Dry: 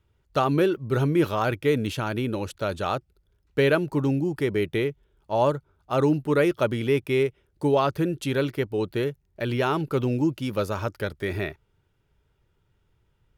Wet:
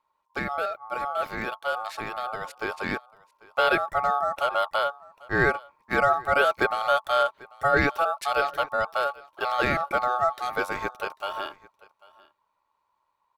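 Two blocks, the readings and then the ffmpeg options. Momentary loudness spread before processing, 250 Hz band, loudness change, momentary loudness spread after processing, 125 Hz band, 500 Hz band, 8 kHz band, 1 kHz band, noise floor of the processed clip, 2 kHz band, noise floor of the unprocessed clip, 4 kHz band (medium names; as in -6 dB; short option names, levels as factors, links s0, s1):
8 LU, -11.0 dB, -0.5 dB, 10 LU, -13.0 dB, -3.5 dB, -2.0 dB, +6.0 dB, -75 dBFS, +6.0 dB, -69 dBFS, +1.5 dB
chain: -af "dynaudnorm=f=330:g=17:m=3.76,aecho=1:1:793:0.0708,aeval=exprs='val(0)*sin(2*PI*990*n/s)':c=same,volume=0.562"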